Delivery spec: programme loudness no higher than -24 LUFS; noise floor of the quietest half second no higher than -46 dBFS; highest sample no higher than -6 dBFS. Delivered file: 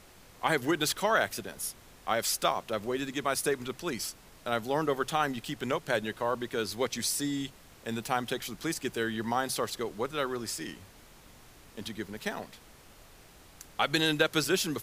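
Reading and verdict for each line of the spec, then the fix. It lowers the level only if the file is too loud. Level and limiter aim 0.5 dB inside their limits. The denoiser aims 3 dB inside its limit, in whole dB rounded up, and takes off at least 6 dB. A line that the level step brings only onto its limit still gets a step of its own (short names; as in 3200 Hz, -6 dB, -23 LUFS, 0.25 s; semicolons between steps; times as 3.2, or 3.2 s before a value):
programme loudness -31.0 LUFS: OK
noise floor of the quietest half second -55 dBFS: OK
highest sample -11.5 dBFS: OK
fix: none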